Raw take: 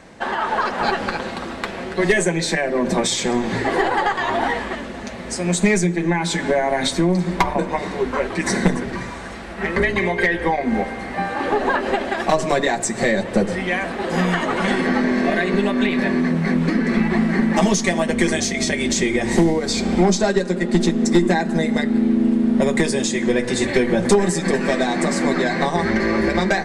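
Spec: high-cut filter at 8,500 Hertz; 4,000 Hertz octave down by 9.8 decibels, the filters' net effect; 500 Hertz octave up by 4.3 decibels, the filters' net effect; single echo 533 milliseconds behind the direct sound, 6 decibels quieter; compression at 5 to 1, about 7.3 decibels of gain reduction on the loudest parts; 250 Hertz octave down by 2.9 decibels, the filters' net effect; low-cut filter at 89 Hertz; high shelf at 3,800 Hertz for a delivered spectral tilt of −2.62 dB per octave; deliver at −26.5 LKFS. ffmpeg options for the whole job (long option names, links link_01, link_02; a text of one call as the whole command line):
ffmpeg -i in.wav -af "highpass=89,lowpass=8500,equalizer=frequency=250:width_type=o:gain=-6.5,equalizer=frequency=500:width_type=o:gain=8,highshelf=frequency=3800:gain=-8,equalizer=frequency=4000:width_type=o:gain=-7,acompressor=threshold=-18dB:ratio=5,aecho=1:1:533:0.501,volume=-4dB" out.wav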